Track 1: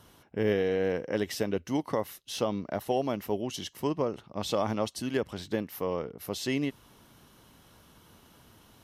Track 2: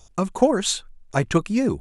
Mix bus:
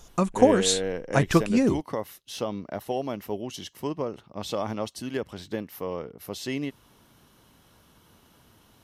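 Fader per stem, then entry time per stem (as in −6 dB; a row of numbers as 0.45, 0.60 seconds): −1.0, −0.5 decibels; 0.00, 0.00 seconds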